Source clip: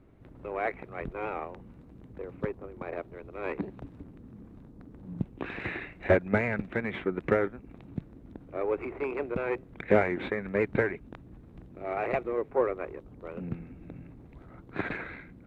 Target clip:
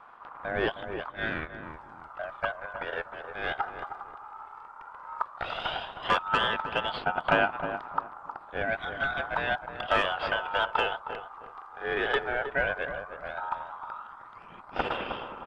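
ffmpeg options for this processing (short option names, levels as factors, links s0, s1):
-filter_complex "[0:a]asettb=1/sr,asplit=3[s0][s1][s2];[s0]atrim=end=0.944[s3];[s1]atrim=start=0.94:end=1.63,asetpts=PTS-STARTPTS,afade=t=in:d=0.004:c=qsin,afade=t=out:st=0.686:d=0.004:c=qsin,agate=range=0.316:threshold=0.0178:ratio=16:detection=peak[s4];[s2]atrim=start=1.626[s5];[s3][s4]acrossfade=d=0.004:c1=hsin:c2=qsin[s6];[s6][s5]acrossfade=d=0.004:c1=qsin:c2=hsin,acrossover=split=270|890[s7][s8][s9];[s8]alimiter=limit=0.0631:level=0:latency=1:release=174[s10];[s7][s10][s9]amix=inputs=3:normalize=0,volume=8.91,asoftclip=hard,volume=0.112,aeval=exprs='val(0)*sin(2*PI*1100*n/s)':c=same,aphaser=in_gain=1:out_gain=1:delay=2.5:decay=0.42:speed=0.13:type=sinusoidal,asplit=2[s11][s12];[s12]adelay=313,lowpass=f=970:p=1,volume=0.447,asplit=2[s13][s14];[s14]adelay=313,lowpass=f=970:p=1,volume=0.29,asplit=2[s15][s16];[s16]adelay=313,lowpass=f=970:p=1,volume=0.29,asplit=2[s17][s18];[s18]adelay=313,lowpass=f=970:p=1,volume=0.29[s19];[s13][s15][s17][s19]amix=inputs=4:normalize=0[s20];[s11][s20]amix=inputs=2:normalize=0,volume=1.68" -ar 22050 -c:a libvorbis -b:a 64k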